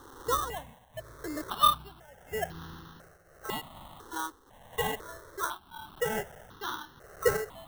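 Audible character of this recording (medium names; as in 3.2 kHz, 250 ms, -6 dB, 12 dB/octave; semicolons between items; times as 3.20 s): a quantiser's noise floor 8-bit, dither triangular; tremolo triangle 0.85 Hz, depth 85%; aliases and images of a low sample rate 2.4 kHz, jitter 0%; notches that jump at a steady rate 2 Hz 650–2300 Hz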